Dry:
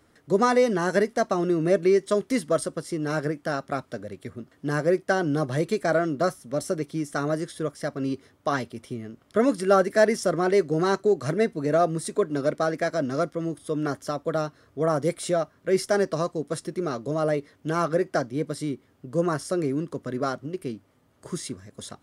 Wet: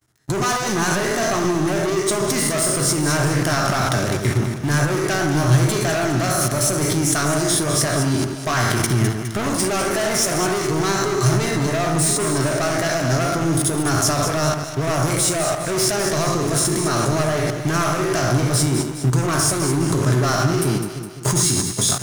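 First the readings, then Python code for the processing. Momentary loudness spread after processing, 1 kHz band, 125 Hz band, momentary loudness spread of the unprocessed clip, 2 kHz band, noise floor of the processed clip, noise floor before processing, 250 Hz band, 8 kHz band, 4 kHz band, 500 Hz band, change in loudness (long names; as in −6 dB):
3 LU, +6.5 dB, +13.5 dB, 12 LU, +8.5 dB, −29 dBFS, −62 dBFS, +5.5 dB, +19.5 dB, +15.5 dB, +1.5 dB, +6.5 dB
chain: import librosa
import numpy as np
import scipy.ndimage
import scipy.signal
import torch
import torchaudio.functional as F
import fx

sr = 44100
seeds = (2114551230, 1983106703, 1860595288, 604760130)

p1 = fx.spec_trails(x, sr, decay_s=0.46)
p2 = fx.high_shelf(p1, sr, hz=5200.0, db=11.0)
p3 = fx.leveller(p2, sr, passes=5)
p4 = fx.level_steps(p3, sr, step_db=23)
p5 = fx.graphic_eq_31(p4, sr, hz=(125, 250, 500, 6300), db=(11, -6, -12, 5))
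p6 = p5 + fx.echo_alternate(p5, sr, ms=103, hz=1600.0, feedback_pct=70, wet_db=-5, dry=0)
p7 = fx.end_taper(p6, sr, db_per_s=180.0)
y = F.gain(torch.from_numpy(p7), 3.5).numpy()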